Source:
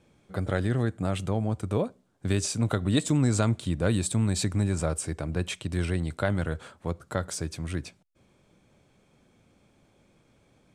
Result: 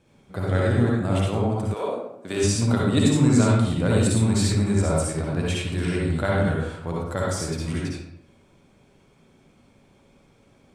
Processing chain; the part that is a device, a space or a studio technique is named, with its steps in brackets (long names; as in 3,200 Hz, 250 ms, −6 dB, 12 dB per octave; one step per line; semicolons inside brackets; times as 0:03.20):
bathroom (convolution reverb RT60 0.80 s, pre-delay 52 ms, DRR −4.5 dB)
0:01.73–0:02.43: high-pass filter 650 Hz → 240 Hz 12 dB per octave